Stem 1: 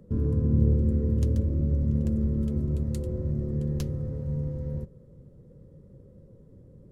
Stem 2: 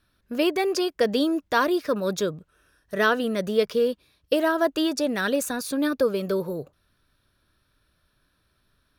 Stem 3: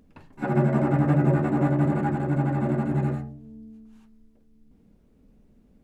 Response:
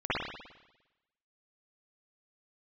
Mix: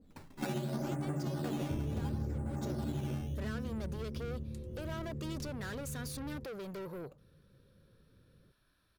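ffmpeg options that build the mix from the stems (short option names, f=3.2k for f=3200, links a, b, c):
-filter_complex "[0:a]adelay=1600,volume=-2dB,afade=t=out:st=2.39:d=0.21:silence=0.266073[a];[1:a]alimiter=limit=-19.5dB:level=0:latency=1:release=453,asoftclip=type=tanh:threshold=-35.5dB,adelay=450,volume=-5dB[b];[2:a]acompressor=threshold=-24dB:ratio=6,acrusher=samples=10:mix=1:aa=0.000001:lfo=1:lforange=10:lforate=0.71,adynamicequalizer=threshold=0.00562:dfrequency=1700:dqfactor=0.7:tfrequency=1700:tqfactor=0.7:attack=5:release=100:ratio=0.375:range=1.5:mode=cutabove:tftype=highshelf,volume=-3.5dB[c];[a][b][c]amix=inputs=3:normalize=0,acompressor=threshold=-32dB:ratio=16"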